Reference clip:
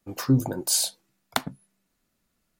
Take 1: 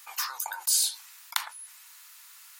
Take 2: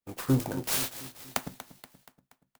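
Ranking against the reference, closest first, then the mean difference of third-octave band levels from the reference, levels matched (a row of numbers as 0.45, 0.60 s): 2, 1; 8.5, 16.0 dB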